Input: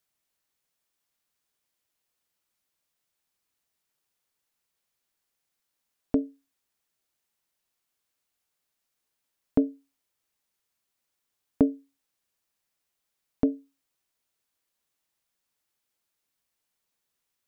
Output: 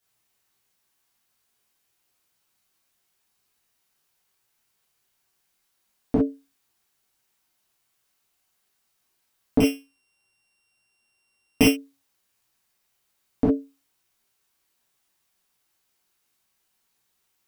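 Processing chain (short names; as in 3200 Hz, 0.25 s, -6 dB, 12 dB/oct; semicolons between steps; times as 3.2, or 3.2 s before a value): 9.6–11.7 sample sorter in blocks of 16 samples; non-linear reverb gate 80 ms flat, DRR -7.5 dB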